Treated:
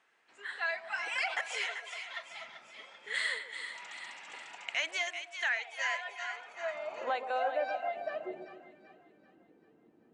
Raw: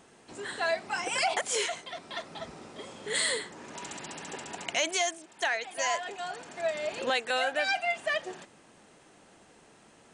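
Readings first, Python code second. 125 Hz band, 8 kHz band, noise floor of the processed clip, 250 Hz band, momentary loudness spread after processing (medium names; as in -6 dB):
under -15 dB, -14.5 dB, -65 dBFS, -10.5 dB, 14 LU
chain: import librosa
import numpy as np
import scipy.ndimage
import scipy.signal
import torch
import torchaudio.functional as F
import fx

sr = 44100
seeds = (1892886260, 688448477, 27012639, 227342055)

y = fx.filter_sweep_bandpass(x, sr, from_hz=1900.0, to_hz=350.0, start_s=6.14, end_s=8.27, q=1.5)
y = fx.echo_split(y, sr, split_hz=960.0, low_ms=133, high_ms=387, feedback_pct=52, wet_db=-8.5)
y = fx.noise_reduce_blind(y, sr, reduce_db=6)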